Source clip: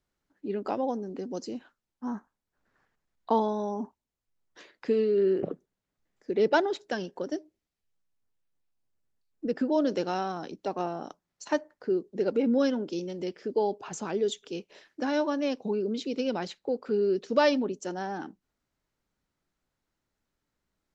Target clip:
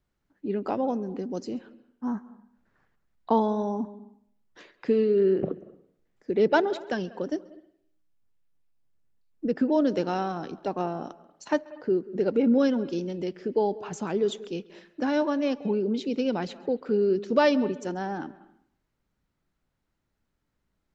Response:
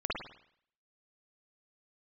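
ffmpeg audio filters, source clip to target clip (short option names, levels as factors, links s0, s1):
-filter_complex "[0:a]bass=f=250:g=5,treble=f=4000:g=-5,asplit=2[s0][s1];[1:a]atrim=start_sample=2205,adelay=135[s2];[s1][s2]afir=irnorm=-1:irlink=0,volume=0.0631[s3];[s0][s3]amix=inputs=2:normalize=0,volume=1.19"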